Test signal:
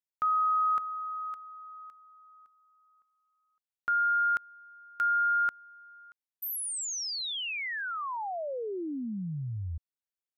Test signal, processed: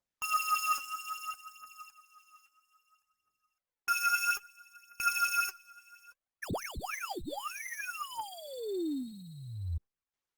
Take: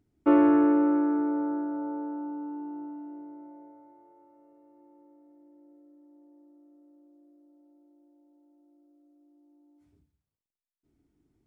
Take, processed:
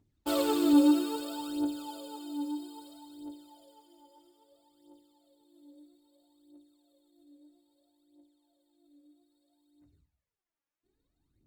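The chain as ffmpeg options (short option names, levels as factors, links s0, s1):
-af "acrusher=samples=11:mix=1:aa=0.000001,aphaser=in_gain=1:out_gain=1:delay=3.7:decay=0.76:speed=0.61:type=triangular,volume=0.398" -ar 48000 -c:a libopus -b:a 20k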